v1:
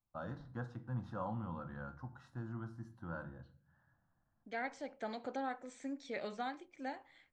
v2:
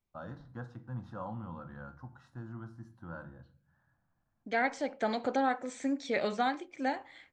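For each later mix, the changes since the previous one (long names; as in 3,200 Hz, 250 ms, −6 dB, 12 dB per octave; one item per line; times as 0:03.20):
second voice +10.5 dB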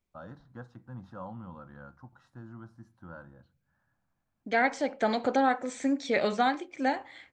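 first voice: send −9.5 dB
second voice +4.5 dB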